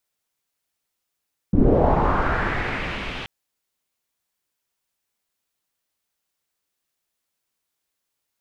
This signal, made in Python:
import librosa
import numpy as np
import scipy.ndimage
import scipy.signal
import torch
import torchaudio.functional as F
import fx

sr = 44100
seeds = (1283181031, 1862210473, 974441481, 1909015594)

y = fx.riser_noise(sr, seeds[0], length_s=1.73, colour='pink', kind='lowpass', start_hz=180.0, end_hz=3000.0, q=2.5, swell_db=-18.5, law='linear')